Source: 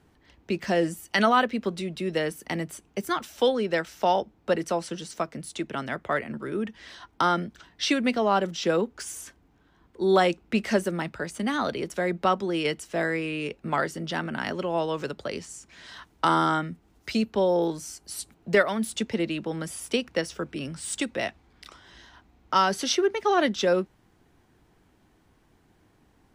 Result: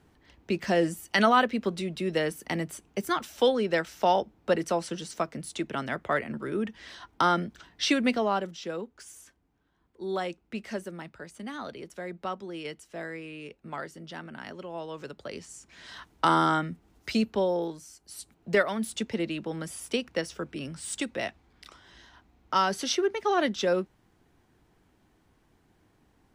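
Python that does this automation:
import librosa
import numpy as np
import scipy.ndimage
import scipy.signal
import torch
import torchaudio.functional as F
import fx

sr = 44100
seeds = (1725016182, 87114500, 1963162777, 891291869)

y = fx.gain(x, sr, db=fx.line((8.11, -0.5), (8.67, -11.0), (14.8, -11.0), (15.92, -0.5), (17.27, -0.5), (17.89, -10.5), (18.52, -3.0)))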